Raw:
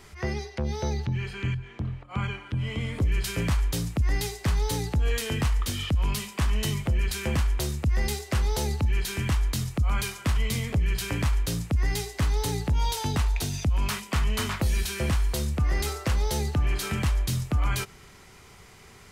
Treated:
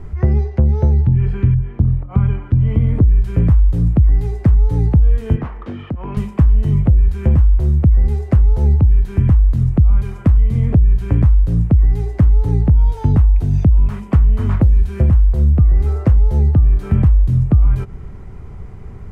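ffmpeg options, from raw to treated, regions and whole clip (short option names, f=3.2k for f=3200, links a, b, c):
-filter_complex "[0:a]asettb=1/sr,asplit=3[a][b][c];[a]atrim=end=5.364[d];[b]atrim=start=5.36:end=6.17,asetpts=PTS-STARTPTS,afade=t=in:d=0.004:c=qsin,afade=t=out:st=0.806:d=0.004:c=qsin,highpass=310,lowpass=2.6k,asoftclip=type=hard:threshold=-30.5dB[e];[c]atrim=start=6.166[f];[d][e]acrossfade=d=0.004:c1=hsin:c2=qsin[g];[g][f]acrossfade=d=0.004:c1=qsin:c2=hsin,aemphasis=mode=reproduction:type=riaa,acompressor=threshold=-17dB:ratio=6,equalizer=f=4.2k:t=o:w=2.4:g=-13.5,volume=8dB"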